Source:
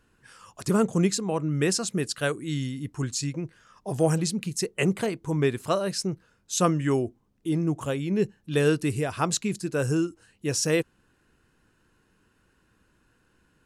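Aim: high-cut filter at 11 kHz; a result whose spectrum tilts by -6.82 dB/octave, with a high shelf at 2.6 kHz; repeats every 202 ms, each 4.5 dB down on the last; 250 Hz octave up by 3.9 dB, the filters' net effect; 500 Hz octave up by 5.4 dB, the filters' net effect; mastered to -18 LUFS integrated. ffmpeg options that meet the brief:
-af "lowpass=11000,equalizer=f=250:t=o:g=4,equalizer=f=500:t=o:g=5.5,highshelf=f=2600:g=-7.5,aecho=1:1:202|404|606|808|1010|1212|1414|1616|1818:0.596|0.357|0.214|0.129|0.0772|0.0463|0.0278|0.0167|0.01,volume=1.58"

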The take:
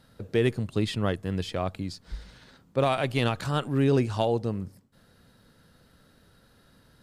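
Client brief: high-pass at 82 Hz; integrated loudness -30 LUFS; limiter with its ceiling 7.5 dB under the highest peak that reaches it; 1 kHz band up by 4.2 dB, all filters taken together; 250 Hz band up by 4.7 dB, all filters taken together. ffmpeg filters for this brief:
-af "highpass=82,equalizer=f=250:t=o:g=5.5,equalizer=f=1000:t=o:g=5.5,volume=0.794,alimiter=limit=0.141:level=0:latency=1"

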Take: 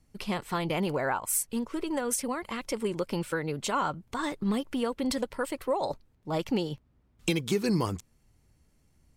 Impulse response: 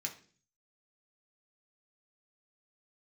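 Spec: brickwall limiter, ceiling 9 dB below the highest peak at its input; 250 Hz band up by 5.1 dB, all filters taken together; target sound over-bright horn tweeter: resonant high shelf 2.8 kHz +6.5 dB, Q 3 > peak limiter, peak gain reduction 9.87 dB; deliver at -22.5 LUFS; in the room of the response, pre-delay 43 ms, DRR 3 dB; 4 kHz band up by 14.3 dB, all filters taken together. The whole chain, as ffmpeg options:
-filter_complex "[0:a]equalizer=f=250:t=o:g=6.5,equalizer=f=4000:t=o:g=5.5,alimiter=limit=0.119:level=0:latency=1,asplit=2[s0][s1];[1:a]atrim=start_sample=2205,adelay=43[s2];[s1][s2]afir=irnorm=-1:irlink=0,volume=0.708[s3];[s0][s3]amix=inputs=2:normalize=0,highshelf=f=2800:t=q:w=3:g=6.5,volume=2,alimiter=limit=0.237:level=0:latency=1"

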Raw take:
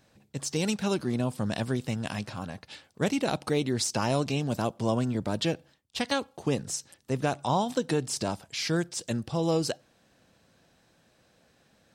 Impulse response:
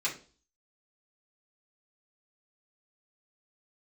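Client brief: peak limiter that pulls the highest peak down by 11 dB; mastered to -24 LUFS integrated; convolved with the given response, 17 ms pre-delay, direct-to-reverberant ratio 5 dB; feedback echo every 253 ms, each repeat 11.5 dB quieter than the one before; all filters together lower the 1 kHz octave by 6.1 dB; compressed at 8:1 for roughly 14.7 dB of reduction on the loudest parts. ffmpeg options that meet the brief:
-filter_complex "[0:a]equalizer=f=1000:t=o:g=-8.5,acompressor=threshold=0.0112:ratio=8,alimiter=level_in=4.22:limit=0.0631:level=0:latency=1,volume=0.237,aecho=1:1:253|506|759:0.266|0.0718|0.0194,asplit=2[s0][s1];[1:a]atrim=start_sample=2205,adelay=17[s2];[s1][s2]afir=irnorm=-1:irlink=0,volume=0.266[s3];[s0][s3]amix=inputs=2:normalize=0,volume=11.9"

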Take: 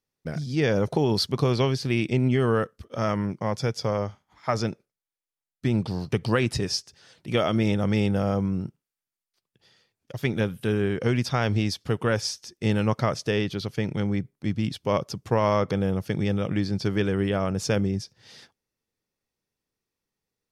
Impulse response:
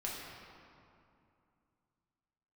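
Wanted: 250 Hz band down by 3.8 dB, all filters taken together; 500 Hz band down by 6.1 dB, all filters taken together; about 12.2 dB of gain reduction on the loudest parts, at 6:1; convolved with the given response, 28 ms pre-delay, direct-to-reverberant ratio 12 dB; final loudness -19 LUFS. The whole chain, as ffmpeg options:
-filter_complex "[0:a]equalizer=f=250:t=o:g=-3.5,equalizer=f=500:t=o:g=-6.5,acompressor=threshold=0.0178:ratio=6,asplit=2[s0][s1];[1:a]atrim=start_sample=2205,adelay=28[s2];[s1][s2]afir=irnorm=-1:irlink=0,volume=0.2[s3];[s0][s3]amix=inputs=2:normalize=0,volume=10"

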